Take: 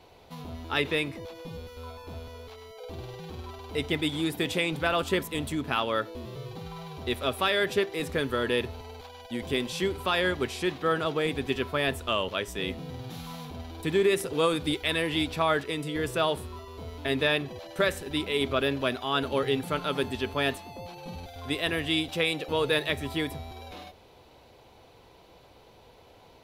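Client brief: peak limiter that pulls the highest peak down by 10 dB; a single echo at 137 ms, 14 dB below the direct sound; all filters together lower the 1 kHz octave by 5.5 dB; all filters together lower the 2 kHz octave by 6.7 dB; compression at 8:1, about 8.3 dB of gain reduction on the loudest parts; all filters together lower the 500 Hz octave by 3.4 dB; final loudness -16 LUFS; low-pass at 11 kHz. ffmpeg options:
-af "lowpass=11000,equalizer=f=500:t=o:g=-3,equalizer=f=1000:t=o:g=-4,equalizer=f=2000:t=o:g=-7.5,acompressor=threshold=0.0282:ratio=8,alimiter=level_in=2:limit=0.0631:level=0:latency=1,volume=0.501,aecho=1:1:137:0.2,volume=16.8"

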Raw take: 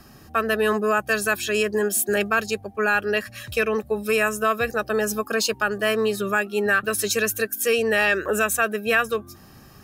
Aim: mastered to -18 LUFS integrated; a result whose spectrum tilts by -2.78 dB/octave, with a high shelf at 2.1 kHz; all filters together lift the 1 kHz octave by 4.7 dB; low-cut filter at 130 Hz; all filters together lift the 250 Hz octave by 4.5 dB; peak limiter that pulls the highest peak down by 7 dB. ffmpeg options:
-af "highpass=130,equalizer=f=250:t=o:g=6,equalizer=f=1000:t=o:g=3.5,highshelf=f=2100:g=8.5,volume=1.26,alimiter=limit=0.447:level=0:latency=1"

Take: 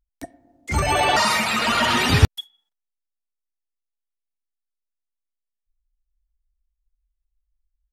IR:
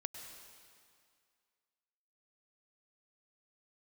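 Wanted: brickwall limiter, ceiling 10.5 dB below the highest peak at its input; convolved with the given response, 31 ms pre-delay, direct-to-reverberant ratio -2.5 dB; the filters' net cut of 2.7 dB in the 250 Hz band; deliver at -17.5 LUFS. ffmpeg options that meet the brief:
-filter_complex "[0:a]equalizer=f=250:t=o:g=-3.5,alimiter=limit=0.251:level=0:latency=1,asplit=2[s0][s1];[1:a]atrim=start_sample=2205,adelay=31[s2];[s1][s2]afir=irnorm=-1:irlink=0,volume=1.68[s3];[s0][s3]amix=inputs=2:normalize=0"

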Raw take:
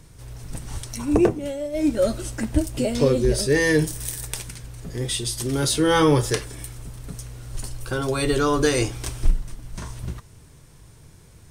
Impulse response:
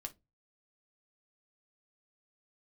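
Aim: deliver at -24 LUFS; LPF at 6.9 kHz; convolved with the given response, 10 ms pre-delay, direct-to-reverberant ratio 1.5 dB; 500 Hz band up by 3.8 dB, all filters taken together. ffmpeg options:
-filter_complex "[0:a]lowpass=6900,equalizer=f=500:t=o:g=4.5,asplit=2[s0][s1];[1:a]atrim=start_sample=2205,adelay=10[s2];[s1][s2]afir=irnorm=-1:irlink=0,volume=1.26[s3];[s0][s3]amix=inputs=2:normalize=0,volume=0.501"

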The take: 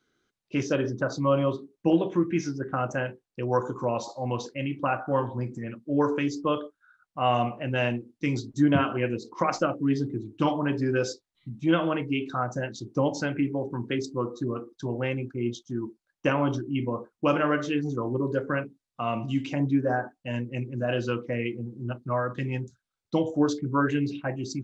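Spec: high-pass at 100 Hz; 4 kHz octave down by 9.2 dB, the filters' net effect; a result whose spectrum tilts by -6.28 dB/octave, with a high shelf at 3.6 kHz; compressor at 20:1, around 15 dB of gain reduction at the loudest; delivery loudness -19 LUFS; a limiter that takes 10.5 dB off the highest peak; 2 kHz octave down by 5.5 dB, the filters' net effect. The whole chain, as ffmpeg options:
-af "highpass=100,equalizer=f=2000:t=o:g=-4.5,highshelf=f=3600:g=-5,equalizer=f=4000:t=o:g=-8.5,acompressor=threshold=0.0251:ratio=20,volume=11.9,alimiter=limit=0.376:level=0:latency=1"

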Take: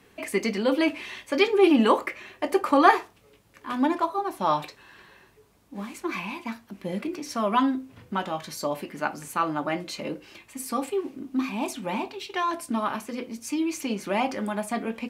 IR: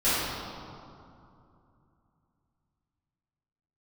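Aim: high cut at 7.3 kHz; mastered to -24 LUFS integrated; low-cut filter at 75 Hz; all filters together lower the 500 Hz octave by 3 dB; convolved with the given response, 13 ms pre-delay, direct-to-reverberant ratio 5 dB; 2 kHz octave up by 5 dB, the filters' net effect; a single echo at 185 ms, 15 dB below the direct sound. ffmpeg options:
-filter_complex "[0:a]highpass=75,lowpass=7300,equalizer=f=500:t=o:g=-4.5,equalizer=f=2000:t=o:g=6.5,aecho=1:1:185:0.178,asplit=2[s0][s1];[1:a]atrim=start_sample=2205,adelay=13[s2];[s1][s2]afir=irnorm=-1:irlink=0,volume=0.0944[s3];[s0][s3]amix=inputs=2:normalize=0,volume=1.12"

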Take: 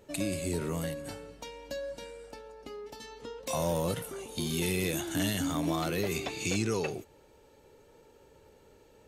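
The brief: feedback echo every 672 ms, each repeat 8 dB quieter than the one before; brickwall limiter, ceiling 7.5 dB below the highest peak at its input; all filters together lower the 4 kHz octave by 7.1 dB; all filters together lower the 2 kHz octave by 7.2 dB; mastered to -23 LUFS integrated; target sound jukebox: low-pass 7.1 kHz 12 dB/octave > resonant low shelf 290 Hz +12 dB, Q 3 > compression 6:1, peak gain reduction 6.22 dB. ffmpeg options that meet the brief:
-af "equalizer=f=2000:t=o:g=-7,equalizer=f=4000:t=o:g=-6,alimiter=level_in=1.5:limit=0.0631:level=0:latency=1,volume=0.668,lowpass=7100,lowshelf=f=290:t=q:w=3:g=12,aecho=1:1:672|1344|2016|2688|3360:0.398|0.159|0.0637|0.0255|0.0102,acompressor=threshold=0.0794:ratio=6,volume=1.88"

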